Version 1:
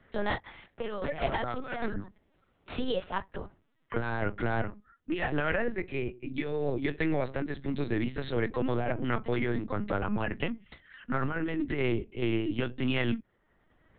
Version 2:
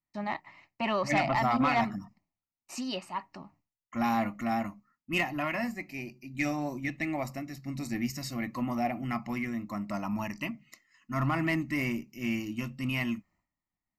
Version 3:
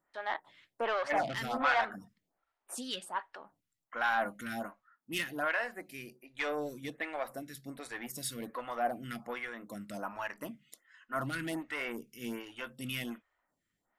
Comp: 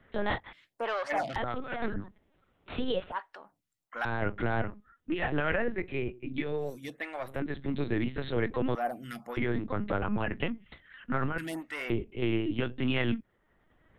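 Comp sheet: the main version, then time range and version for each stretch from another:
1
0:00.53–0:01.36: punch in from 3
0:03.12–0:04.05: punch in from 3
0:06.66–0:07.30: punch in from 3, crossfade 0.24 s
0:08.75–0:09.37: punch in from 3
0:11.38–0:11.90: punch in from 3
not used: 2

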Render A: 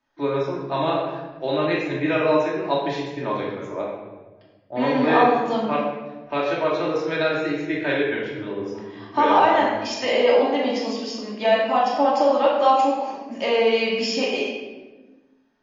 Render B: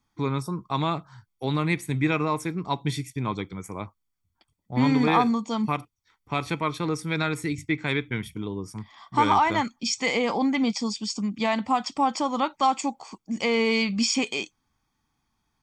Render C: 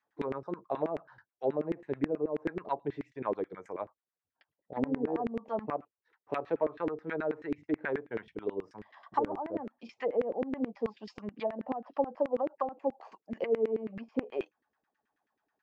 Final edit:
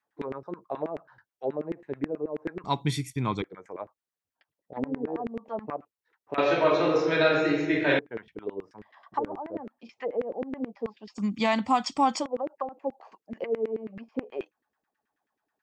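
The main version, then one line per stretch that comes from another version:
C
0:02.64–0:03.42: punch in from B
0:06.38–0:07.99: punch in from A
0:11.19–0:12.22: punch in from B, crossfade 0.10 s

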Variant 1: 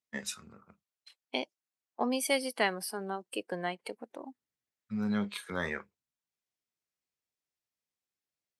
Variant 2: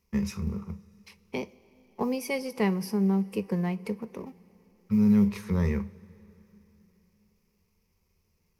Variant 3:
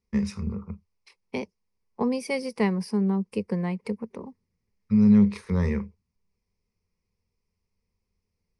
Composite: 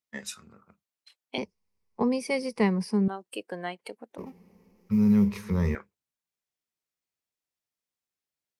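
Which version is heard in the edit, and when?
1
0:01.38–0:03.08: punch in from 3
0:04.18–0:05.75: punch in from 2

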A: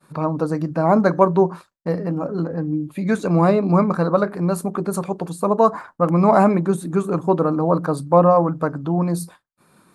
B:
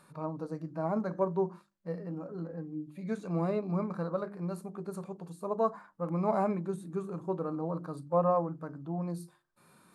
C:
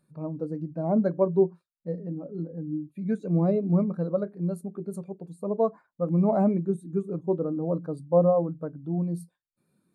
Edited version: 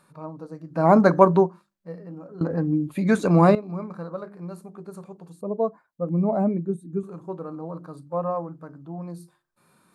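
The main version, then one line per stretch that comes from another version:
B
0:00.78–0:01.44: punch in from A, crossfade 0.16 s
0:02.41–0:03.55: punch in from A
0:05.41–0:07.03: punch in from C

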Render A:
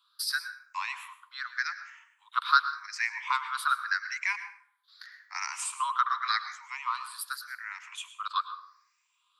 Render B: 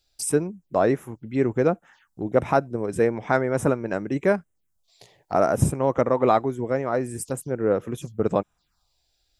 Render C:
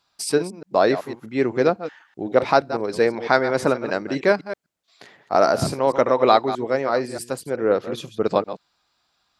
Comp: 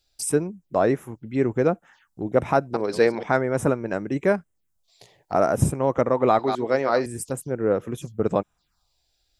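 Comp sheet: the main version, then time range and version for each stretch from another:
B
0:02.74–0:03.23: punch in from C
0:06.39–0:07.06: punch in from C
not used: A

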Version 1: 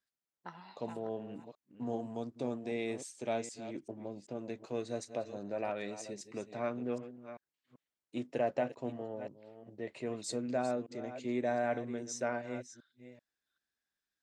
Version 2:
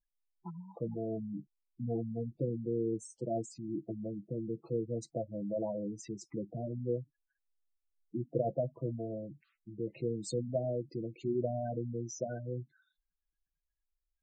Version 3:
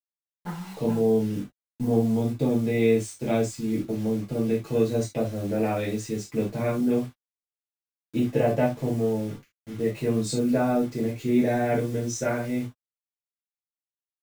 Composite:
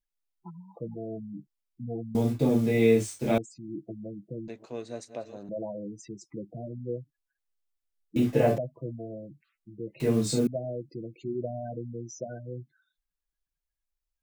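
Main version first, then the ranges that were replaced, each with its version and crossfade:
2
0:02.15–0:03.38: punch in from 3
0:04.48–0:05.49: punch in from 1
0:08.16–0:08.58: punch in from 3
0:10.00–0:10.47: punch in from 3

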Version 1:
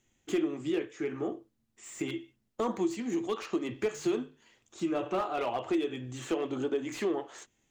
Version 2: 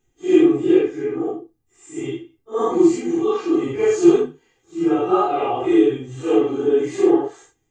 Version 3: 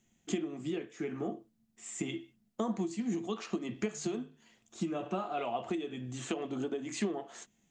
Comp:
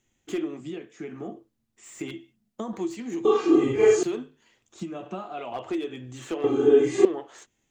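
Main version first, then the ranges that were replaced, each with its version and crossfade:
1
0:00.60–0:01.36: punch in from 3
0:02.12–0:02.73: punch in from 3
0:03.25–0:04.03: punch in from 2
0:04.82–0:05.52: punch in from 3
0:06.44–0:07.05: punch in from 2

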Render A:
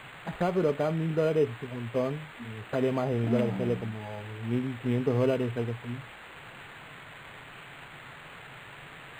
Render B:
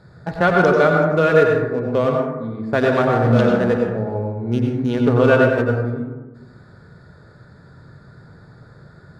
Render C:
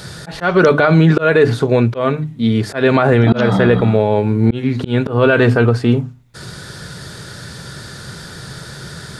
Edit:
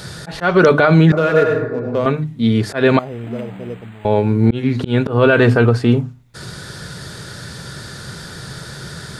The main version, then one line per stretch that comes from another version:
C
0:01.12–0:02.06: punch in from B
0:02.99–0:04.05: punch in from A

